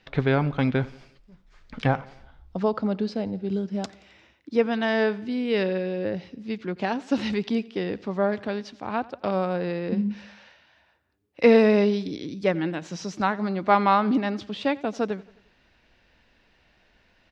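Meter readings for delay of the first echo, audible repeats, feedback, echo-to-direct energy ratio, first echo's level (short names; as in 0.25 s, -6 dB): 88 ms, 3, 52%, -20.0 dB, -21.5 dB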